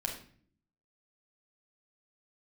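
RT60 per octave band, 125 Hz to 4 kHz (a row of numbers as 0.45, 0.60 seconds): 0.90, 0.85, 0.55, 0.45, 0.50, 0.40 seconds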